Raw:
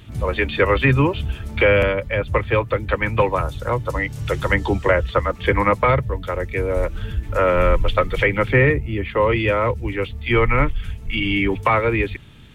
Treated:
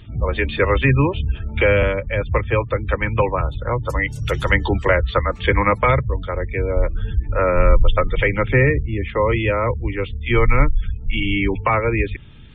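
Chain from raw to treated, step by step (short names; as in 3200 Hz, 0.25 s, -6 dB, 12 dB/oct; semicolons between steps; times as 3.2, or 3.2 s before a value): 3.8–6.07 high shelf 2100 Hz -> 2700 Hz +7.5 dB; spectral gate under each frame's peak -30 dB strong; low shelf 72 Hz +8.5 dB; gain -1 dB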